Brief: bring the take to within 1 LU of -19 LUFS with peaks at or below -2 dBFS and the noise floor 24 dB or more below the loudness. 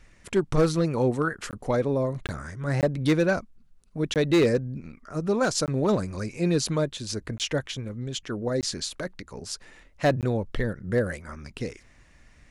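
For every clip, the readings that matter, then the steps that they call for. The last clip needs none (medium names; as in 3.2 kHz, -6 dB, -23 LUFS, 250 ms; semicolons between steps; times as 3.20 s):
clipped samples 0.6%; clipping level -15.0 dBFS; dropouts 8; longest dropout 18 ms; loudness -27.0 LUFS; peak level -15.0 dBFS; loudness target -19.0 LUFS
-> clip repair -15 dBFS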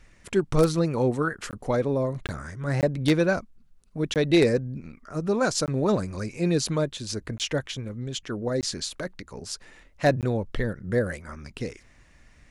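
clipped samples 0.0%; dropouts 8; longest dropout 18 ms
-> interpolate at 1.51/2.27/2.81/4.14/5.66/7.38/8.61/10.21 s, 18 ms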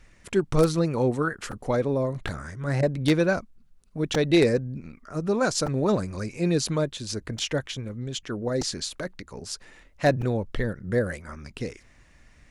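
dropouts 0; loudness -26.5 LUFS; peak level -6.0 dBFS; loudness target -19.0 LUFS
-> trim +7.5 dB; peak limiter -2 dBFS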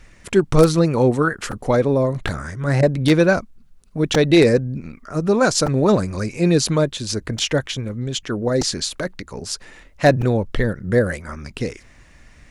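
loudness -19.5 LUFS; peak level -2.0 dBFS; noise floor -49 dBFS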